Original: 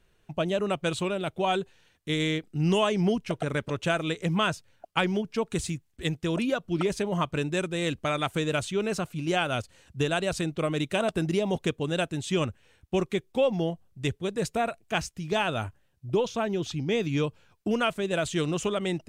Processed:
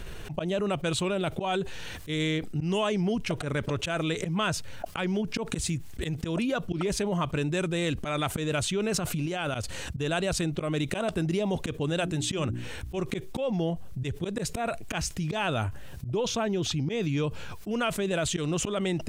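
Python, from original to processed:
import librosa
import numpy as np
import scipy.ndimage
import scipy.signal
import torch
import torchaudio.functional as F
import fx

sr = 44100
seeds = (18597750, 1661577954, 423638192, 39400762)

y = fx.over_compress(x, sr, threshold_db=-36.0, ratio=-1.0, at=(8.94, 9.55))
y = fx.hum_notches(y, sr, base_hz=60, count=6, at=(11.9, 12.99))
y = fx.auto_swell(y, sr, attack_ms=151.0)
y = fx.low_shelf(y, sr, hz=94.0, db=5.5)
y = fx.env_flatten(y, sr, amount_pct=70)
y = y * librosa.db_to_amplitude(-4.5)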